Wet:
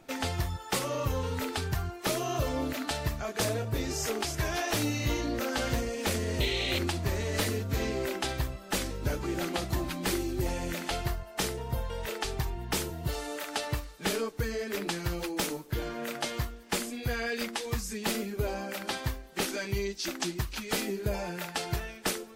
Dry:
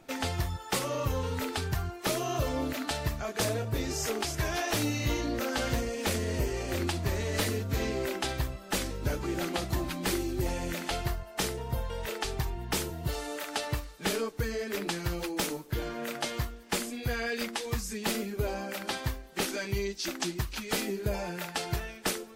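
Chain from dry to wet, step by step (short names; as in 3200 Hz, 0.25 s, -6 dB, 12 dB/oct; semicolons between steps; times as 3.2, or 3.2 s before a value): painted sound noise, 6.4–6.79, 1900–4300 Hz -33 dBFS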